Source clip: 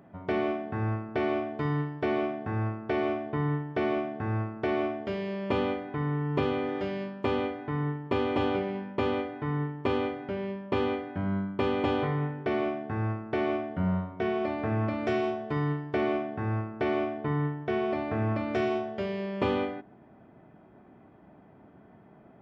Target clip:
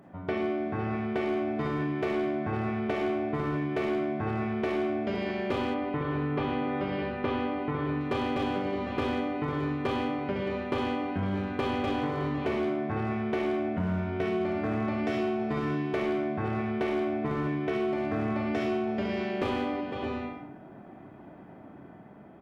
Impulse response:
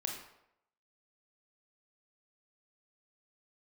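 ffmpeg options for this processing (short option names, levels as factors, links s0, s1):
-filter_complex "[0:a]aecho=1:1:291|504|608|621|646:0.119|0.224|0.133|0.15|0.112,dynaudnorm=f=120:g=21:m=1.41,volume=9.44,asoftclip=hard,volume=0.106,bandreject=f=60:t=h:w=6,bandreject=f=120:t=h:w=6[s0];[1:a]atrim=start_sample=2205,atrim=end_sample=6174,asetrate=40572,aresample=44100[s1];[s0][s1]afir=irnorm=-1:irlink=0,acompressor=threshold=0.0355:ratio=4,asettb=1/sr,asplit=3[s2][s3][s4];[s2]atrim=end=5.744[s5];[s3]atrim=start=5.74:end=8.01,asetpts=PTS-STARTPTS,afade=t=in:d=0.004:c=qsin,afade=t=out:st=2.266:d=0.004:c=qsin,lowpass=3400[s6];[s4]atrim=start=8.006[s7];[s5][s6]acrossfade=d=0.004:c1=hsin:c2=qsin[s8];[s8][s7]acrossfade=d=0.004:c1=qsin:c2=hsin,volume=1.26"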